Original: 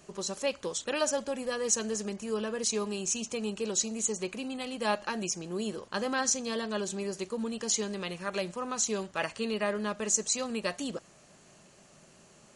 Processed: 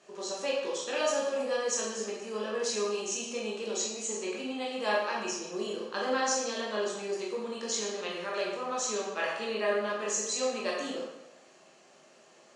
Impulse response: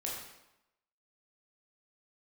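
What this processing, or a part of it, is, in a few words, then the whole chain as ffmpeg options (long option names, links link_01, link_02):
supermarket ceiling speaker: -filter_complex "[0:a]highpass=330,lowpass=5900[link_01];[1:a]atrim=start_sample=2205[link_02];[link_01][link_02]afir=irnorm=-1:irlink=0"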